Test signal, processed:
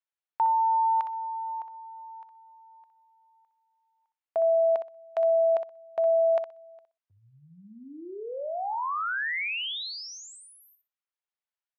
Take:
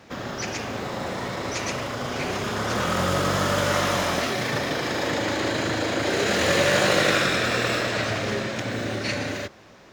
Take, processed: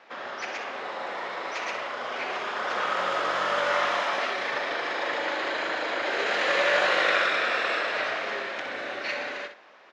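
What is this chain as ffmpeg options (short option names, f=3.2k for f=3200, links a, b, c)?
-filter_complex "[0:a]highpass=650,lowpass=3k,asplit=2[a][b];[b]aecho=0:1:62|124|186:0.355|0.0639|0.0115[c];[a][c]amix=inputs=2:normalize=0"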